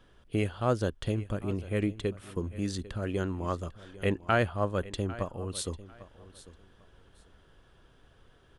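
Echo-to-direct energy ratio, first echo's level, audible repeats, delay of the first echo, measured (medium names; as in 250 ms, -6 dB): -17.5 dB, -17.5 dB, 2, 798 ms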